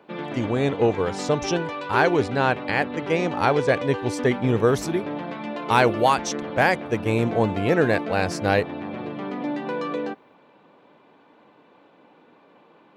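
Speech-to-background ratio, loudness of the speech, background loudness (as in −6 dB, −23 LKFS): 8.0 dB, −23.0 LKFS, −31.0 LKFS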